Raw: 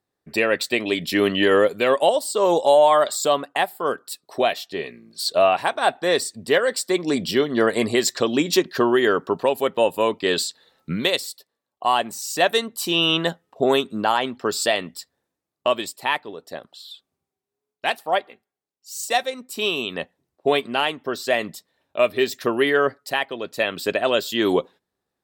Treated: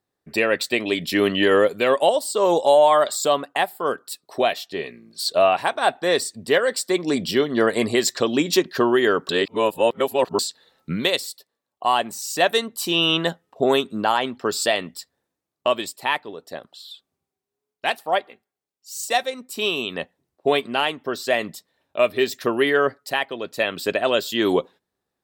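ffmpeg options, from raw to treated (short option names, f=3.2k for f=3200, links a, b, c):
-filter_complex "[0:a]asplit=3[a][b][c];[a]atrim=end=9.292[d];[b]atrim=start=9.288:end=10.392,asetpts=PTS-STARTPTS,areverse[e];[c]atrim=start=10.388[f];[d][e]acrossfade=d=0.004:c1=hsin:c2=hsin[g];[g][f]acrossfade=d=0.004:c1=hsin:c2=hsin"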